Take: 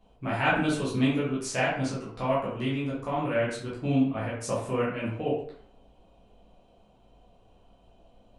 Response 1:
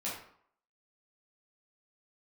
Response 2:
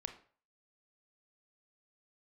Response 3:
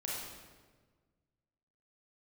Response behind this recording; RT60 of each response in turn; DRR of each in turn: 1; 0.65 s, 0.45 s, 1.4 s; -8.0 dB, 6.5 dB, -5.5 dB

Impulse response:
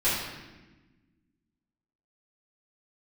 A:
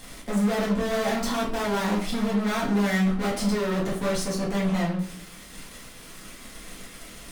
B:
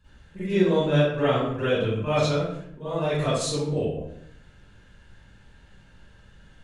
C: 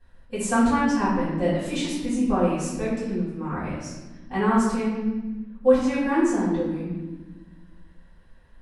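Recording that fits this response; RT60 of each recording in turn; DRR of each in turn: C; 0.55 s, 0.70 s, 1.2 s; -7.5 dB, -13.5 dB, -12.5 dB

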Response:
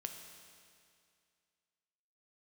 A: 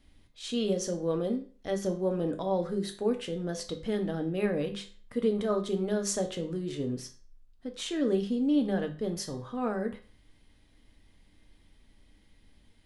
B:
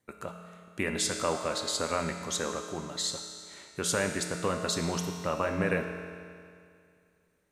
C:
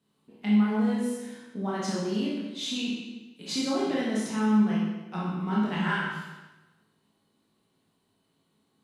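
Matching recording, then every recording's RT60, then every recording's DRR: B; 0.40 s, 2.3 s, 1.1 s; 5.0 dB, 4.5 dB, -6.5 dB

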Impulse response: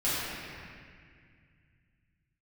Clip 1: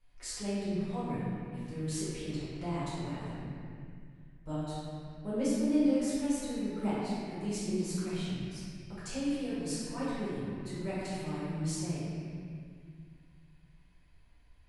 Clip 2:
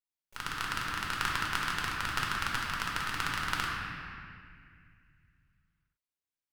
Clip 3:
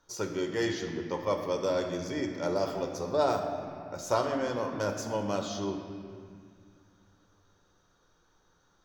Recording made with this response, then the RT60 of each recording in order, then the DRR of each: 1; 2.0 s, 2.0 s, 2.1 s; -12.0 dB, -3.5 dB, 3.5 dB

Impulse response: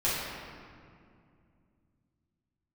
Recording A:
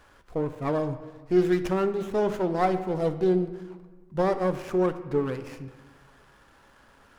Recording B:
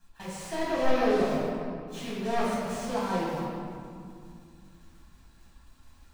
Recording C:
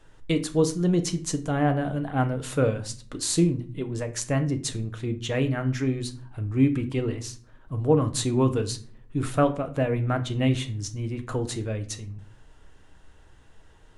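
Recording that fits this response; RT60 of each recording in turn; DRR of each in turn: B; 1.4 s, 2.3 s, 0.45 s; 9.0 dB, -11.0 dB, 7.0 dB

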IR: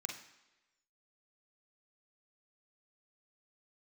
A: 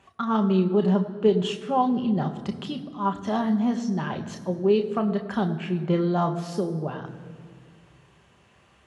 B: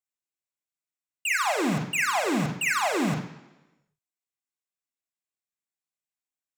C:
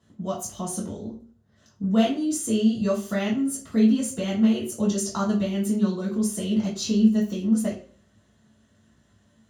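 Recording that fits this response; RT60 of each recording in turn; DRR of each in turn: B; 2.0 s, 1.1 s, 0.45 s; 4.5 dB, 1.5 dB, -5.0 dB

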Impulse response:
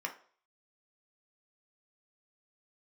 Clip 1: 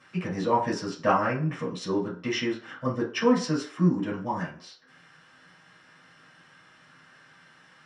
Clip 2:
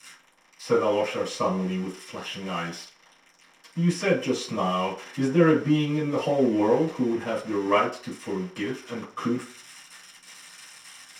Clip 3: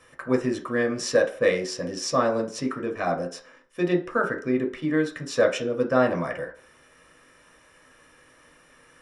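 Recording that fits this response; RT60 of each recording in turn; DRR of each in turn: 3; 0.50 s, 0.50 s, 0.45 s; -7.5 dB, -13.0 dB, 1.5 dB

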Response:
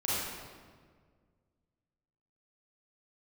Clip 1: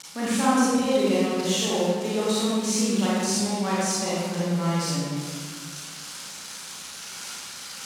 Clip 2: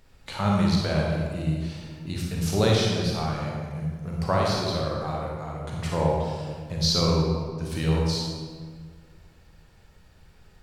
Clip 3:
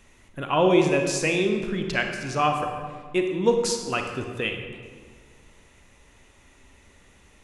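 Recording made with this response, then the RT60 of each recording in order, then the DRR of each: 1; 1.7 s, 1.7 s, 1.7 s; -9.0 dB, -2.5 dB, 4.0 dB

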